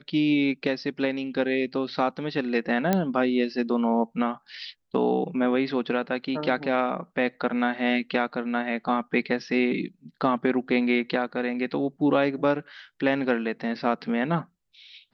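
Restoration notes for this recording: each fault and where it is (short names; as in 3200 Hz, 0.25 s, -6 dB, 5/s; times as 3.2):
2.93 pop -9 dBFS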